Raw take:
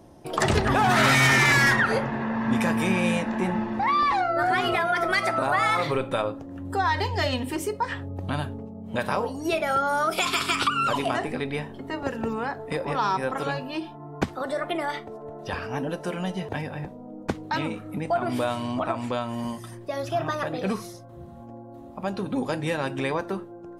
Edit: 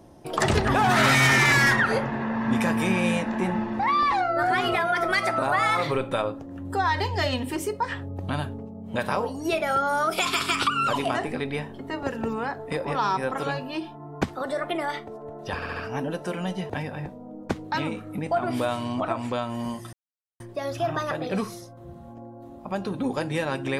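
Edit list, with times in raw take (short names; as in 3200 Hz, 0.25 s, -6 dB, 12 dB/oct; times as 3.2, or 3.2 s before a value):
15.55 stutter 0.07 s, 4 plays
19.72 insert silence 0.47 s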